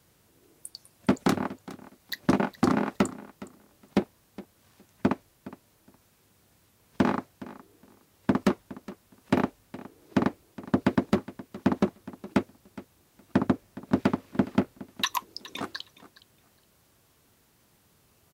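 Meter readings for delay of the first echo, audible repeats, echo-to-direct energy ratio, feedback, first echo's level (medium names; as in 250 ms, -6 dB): 415 ms, 2, -18.0 dB, 16%, -18.0 dB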